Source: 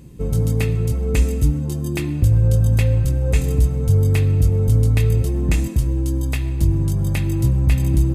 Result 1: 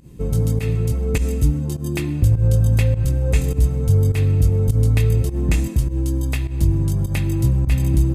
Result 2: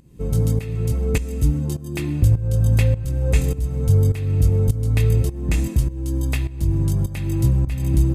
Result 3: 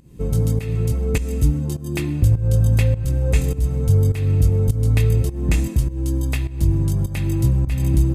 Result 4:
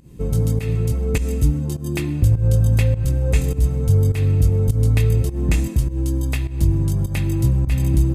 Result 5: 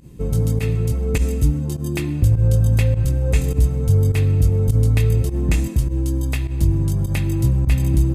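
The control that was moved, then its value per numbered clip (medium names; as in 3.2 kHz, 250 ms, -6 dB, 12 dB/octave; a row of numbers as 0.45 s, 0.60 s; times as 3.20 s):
volume shaper, release: 114 ms, 485 ms, 277 ms, 171 ms, 78 ms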